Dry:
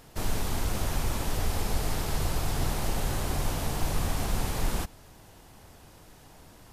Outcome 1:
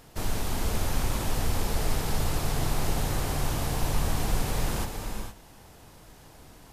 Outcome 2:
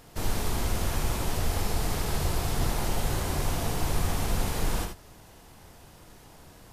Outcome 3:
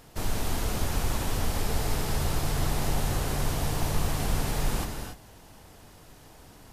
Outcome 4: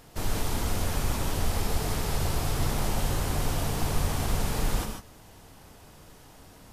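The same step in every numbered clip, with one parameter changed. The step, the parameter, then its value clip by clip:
reverb whose tail is shaped and stops, gate: 490, 100, 310, 170 milliseconds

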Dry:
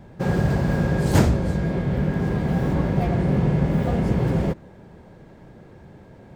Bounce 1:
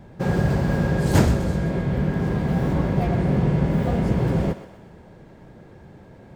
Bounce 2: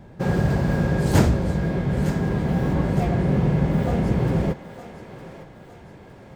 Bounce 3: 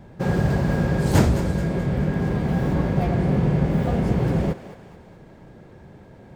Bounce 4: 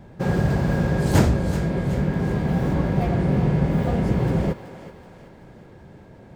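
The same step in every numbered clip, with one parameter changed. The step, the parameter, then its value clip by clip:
feedback echo with a high-pass in the loop, delay time: 126, 910, 214, 378 milliseconds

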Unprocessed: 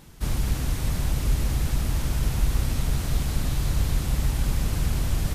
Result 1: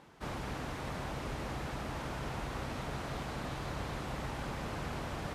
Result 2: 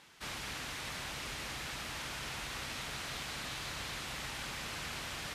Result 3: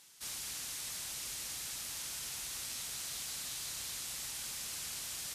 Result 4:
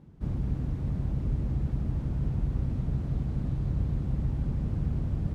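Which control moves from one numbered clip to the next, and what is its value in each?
resonant band-pass, frequency: 860, 2,300, 7,300, 160 Hertz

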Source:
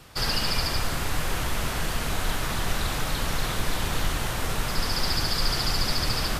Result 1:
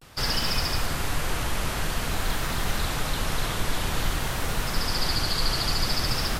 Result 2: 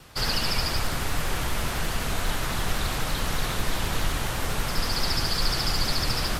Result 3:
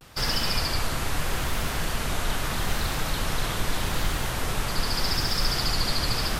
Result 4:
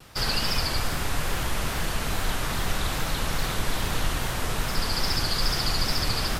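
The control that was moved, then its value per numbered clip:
pitch vibrato, speed: 0.51, 12, 0.8, 2.4 Hertz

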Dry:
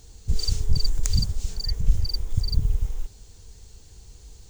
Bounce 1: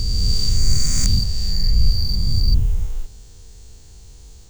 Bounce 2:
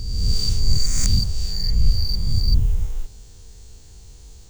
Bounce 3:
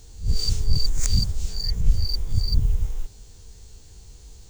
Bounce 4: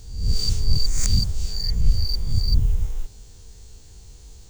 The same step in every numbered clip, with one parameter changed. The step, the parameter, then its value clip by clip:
peak hold with a rise ahead of every peak, rising 60 dB in: 2.99, 1.37, 0.31, 0.65 seconds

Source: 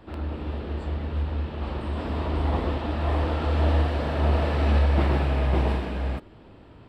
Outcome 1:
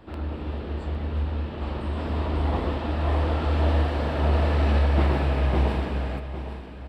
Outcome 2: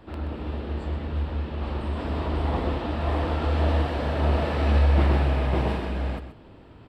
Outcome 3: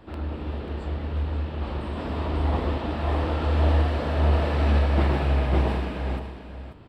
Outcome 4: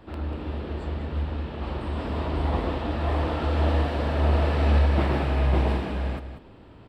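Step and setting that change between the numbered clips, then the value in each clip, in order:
single-tap delay, delay time: 808, 127, 539, 191 milliseconds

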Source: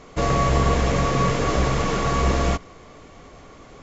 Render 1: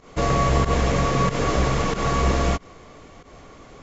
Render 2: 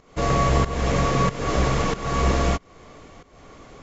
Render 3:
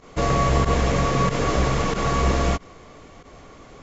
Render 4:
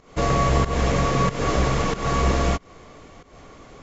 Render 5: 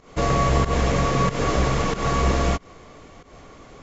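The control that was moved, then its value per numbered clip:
fake sidechain pumping, release: 101, 393, 68, 227, 151 milliseconds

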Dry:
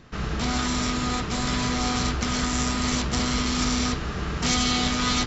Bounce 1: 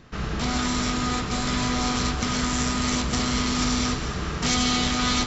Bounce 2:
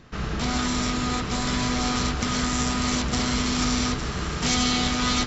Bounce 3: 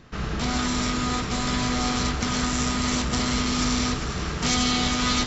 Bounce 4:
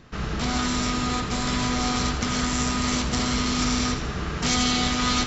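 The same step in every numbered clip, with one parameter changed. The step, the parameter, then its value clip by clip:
echo with a time of its own for lows and highs, highs: 218, 857, 398, 84 milliseconds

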